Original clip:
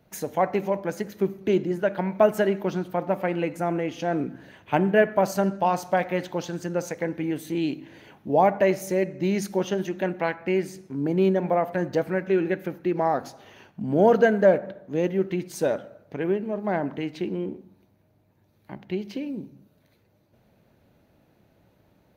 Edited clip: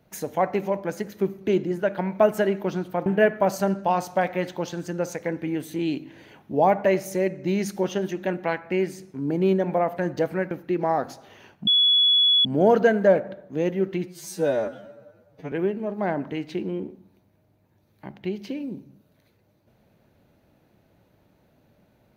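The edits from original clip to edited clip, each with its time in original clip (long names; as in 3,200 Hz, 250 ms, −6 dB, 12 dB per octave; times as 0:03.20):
0:03.06–0:04.82: remove
0:12.27–0:12.67: remove
0:13.83: insert tone 3,390 Hz −15 dBFS 0.78 s
0:15.46–0:16.18: time-stretch 2×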